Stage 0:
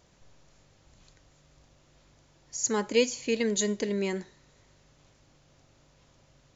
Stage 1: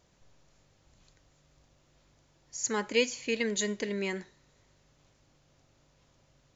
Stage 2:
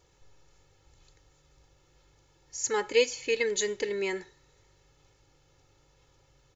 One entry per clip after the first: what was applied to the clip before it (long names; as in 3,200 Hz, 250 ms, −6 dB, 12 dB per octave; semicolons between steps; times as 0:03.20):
dynamic equaliser 2,000 Hz, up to +7 dB, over −47 dBFS, Q 0.77; level −4.5 dB
comb filter 2.3 ms, depth 75%